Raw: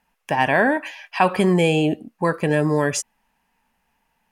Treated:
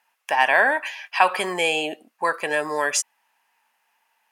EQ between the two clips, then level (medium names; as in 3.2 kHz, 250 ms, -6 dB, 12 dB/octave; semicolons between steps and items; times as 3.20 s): high-pass 770 Hz 12 dB/octave; +3.0 dB